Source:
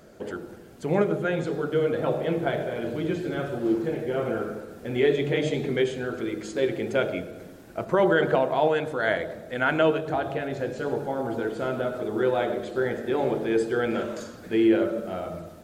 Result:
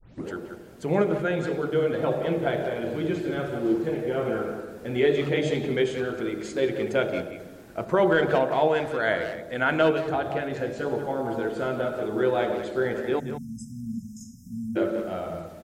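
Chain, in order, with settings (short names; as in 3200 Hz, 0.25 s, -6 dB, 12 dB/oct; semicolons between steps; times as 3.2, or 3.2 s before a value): tape start at the beginning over 0.30 s; spectral delete 13.2–14.76, 260–5000 Hz; speakerphone echo 0.18 s, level -8 dB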